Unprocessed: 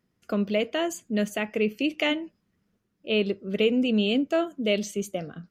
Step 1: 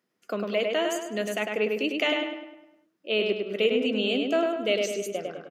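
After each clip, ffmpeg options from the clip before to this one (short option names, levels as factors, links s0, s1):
-filter_complex "[0:a]highpass=340,asplit=2[s0][s1];[s1]adelay=102,lowpass=f=3500:p=1,volume=0.708,asplit=2[s2][s3];[s3]adelay=102,lowpass=f=3500:p=1,volume=0.5,asplit=2[s4][s5];[s5]adelay=102,lowpass=f=3500:p=1,volume=0.5,asplit=2[s6][s7];[s7]adelay=102,lowpass=f=3500:p=1,volume=0.5,asplit=2[s8][s9];[s9]adelay=102,lowpass=f=3500:p=1,volume=0.5,asplit=2[s10][s11];[s11]adelay=102,lowpass=f=3500:p=1,volume=0.5,asplit=2[s12][s13];[s13]adelay=102,lowpass=f=3500:p=1,volume=0.5[s14];[s2][s4][s6][s8][s10][s12][s14]amix=inputs=7:normalize=0[s15];[s0][s15]amix=inputs=2:normalize=0"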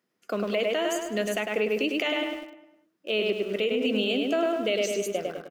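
-filter_complex "[0:a]asplit=2[s0][s1];[s1]aeval=exprs='val(0)*gte(abs(val(0)),0.0141)':c=same,volume=0.335[s2];[s0][s2]amix=inputs=2:normalize=0,alimiter=limit=0.15:level=0:latency=1:release=118"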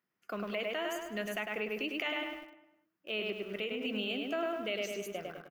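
-af "equalizer=f=250:t=o:w=1:g=-6,equalizer=f=500:t=o:w=1:g=-9,equalizer=f=4000:t=o:w=1:g=-6,equalizer=f=8000:t=o:w=1:g=-10,volume=0.708"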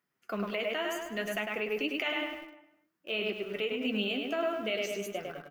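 -af "flanger=delay=6.9:depth=7.1:regen=49:speed=0.55:shape=sinusoidal,volume=2.24"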